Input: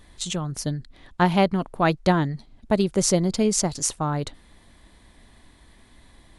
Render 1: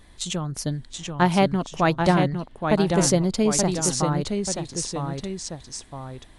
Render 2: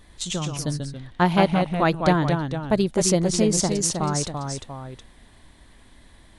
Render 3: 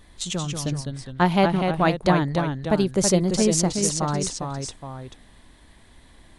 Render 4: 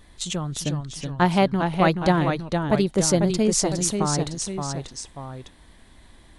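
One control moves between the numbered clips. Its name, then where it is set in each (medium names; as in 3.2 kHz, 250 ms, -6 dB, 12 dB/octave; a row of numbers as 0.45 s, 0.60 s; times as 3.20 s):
ever faster or slower copies, time: 715 ms, 99 ms, 165 ms, 335 ms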